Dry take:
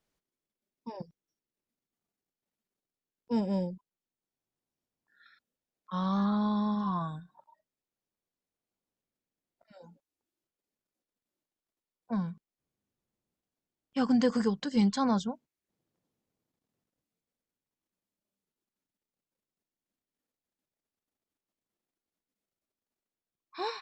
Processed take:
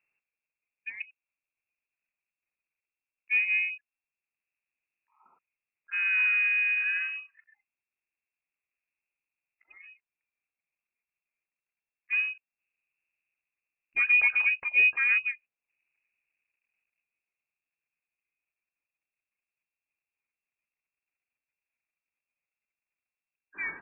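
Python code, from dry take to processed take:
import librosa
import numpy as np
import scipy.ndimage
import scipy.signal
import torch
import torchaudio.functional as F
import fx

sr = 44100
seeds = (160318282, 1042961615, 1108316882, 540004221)

y = fx.low_shelf(x, sr, hz=460.0, db=7.0)
y = fx.freq_invert(y, sr, carrier_hz=2700)
y = y * librosa.db_to_amplitude(-2.5)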